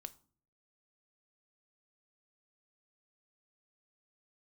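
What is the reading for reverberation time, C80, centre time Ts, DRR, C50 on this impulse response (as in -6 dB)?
0.45 s, 24.0 dB, 4 ms, 9.5 dB, 19.5 dB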